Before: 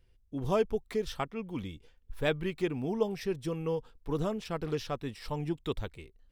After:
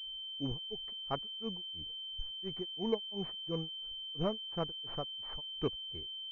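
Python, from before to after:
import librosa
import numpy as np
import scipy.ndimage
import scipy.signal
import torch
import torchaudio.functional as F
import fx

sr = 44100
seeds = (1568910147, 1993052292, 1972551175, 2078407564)

y = fx.granulator(x, sr, seeds[0], grain_ms=252.0, per_s=2.9, spray_ms=100.0, spread_st=0)
y = fx.pwm(y, sr, carrier_hz=3100.0)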